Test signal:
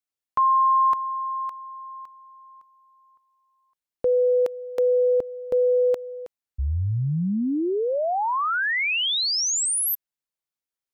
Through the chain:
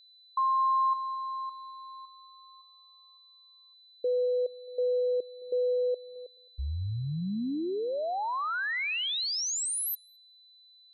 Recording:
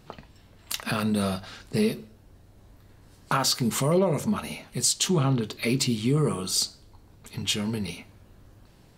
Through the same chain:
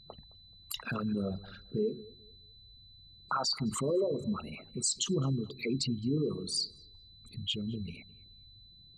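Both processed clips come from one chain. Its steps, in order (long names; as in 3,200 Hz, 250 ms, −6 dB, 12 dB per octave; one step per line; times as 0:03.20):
spectral envelope exaggerated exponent 3
feedback echo with a low-pass in the loop 214 ms, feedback 26%, low-pass 2,500 Hz, level −21 dB
steady tone 4,000 Hz −48 dBFS
level −7.5 dB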